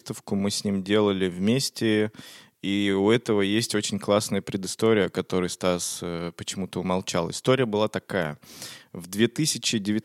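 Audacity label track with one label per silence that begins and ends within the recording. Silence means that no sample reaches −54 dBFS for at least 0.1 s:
2.490000	2.630000	silence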